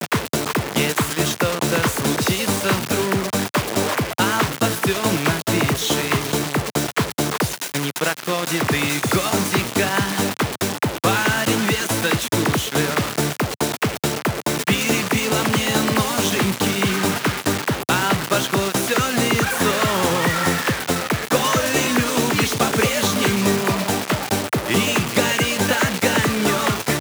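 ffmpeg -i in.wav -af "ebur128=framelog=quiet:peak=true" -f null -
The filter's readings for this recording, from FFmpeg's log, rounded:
Integrated loudness:
  I:         -19.7 LUFS
  Threshold: -29.7 LUFS
Loudness range:
  LRA:         2.0 LU
  Threshold: -39.7 LUFS
  LRA low:   -20.7 LUFS
  LRA high:  -18.7 LUFS
True peak:
  Peak:       -3.4 dBFS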